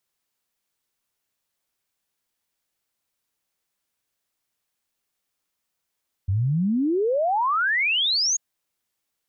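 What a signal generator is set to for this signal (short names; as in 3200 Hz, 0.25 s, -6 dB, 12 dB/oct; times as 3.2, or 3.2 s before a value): log sweep 90 Hz -> 6800 Hz 2.09 s -19 dBFS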